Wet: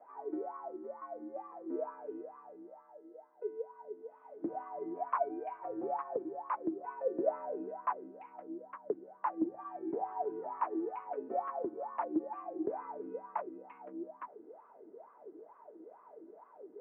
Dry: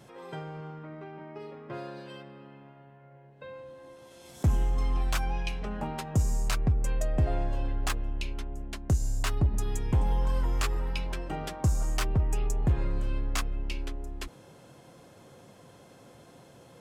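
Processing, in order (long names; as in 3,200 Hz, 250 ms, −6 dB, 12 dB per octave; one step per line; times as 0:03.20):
LFO wah 2.2 Hz 400–1,200 Hz, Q 18
single-sideband voice off tune −83 Hz 320–2,200 Hz
level +15 dB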